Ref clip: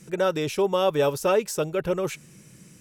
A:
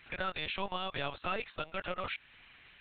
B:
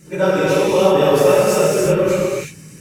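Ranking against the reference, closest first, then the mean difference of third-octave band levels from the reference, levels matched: B, A; 8.5 dB, 11.0 dB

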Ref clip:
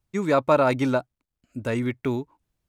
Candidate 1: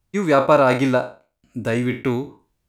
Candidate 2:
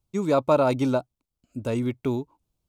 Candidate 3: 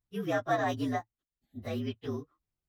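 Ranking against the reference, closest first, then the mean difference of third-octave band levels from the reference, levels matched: 2, 1, 3; 1.5 dB, 2.5 dB, 6.0 dB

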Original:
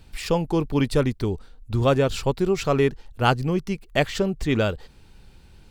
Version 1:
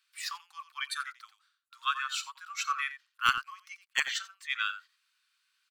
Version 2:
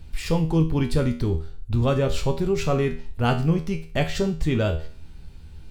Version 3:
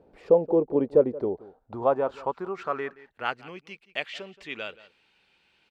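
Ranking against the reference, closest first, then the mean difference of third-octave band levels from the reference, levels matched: 2, 3, 1; 3.5 dB, 9.5 dB, 15.0 dB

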